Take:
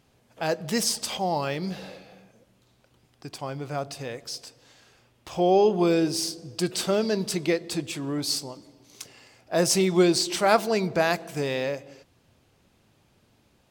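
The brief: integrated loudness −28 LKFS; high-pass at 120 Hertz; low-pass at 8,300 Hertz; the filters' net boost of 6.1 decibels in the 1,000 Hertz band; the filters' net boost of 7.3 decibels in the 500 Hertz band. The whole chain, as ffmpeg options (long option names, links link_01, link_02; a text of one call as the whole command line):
ffmpeg -i in.wav -af "highpass=120,lowpass=8300,equalizer=frequency=500:width_type=o:gain=8.5,equalizer=frequency=1000:width_type=o:gain=4.5,volume=-8dB" out.wav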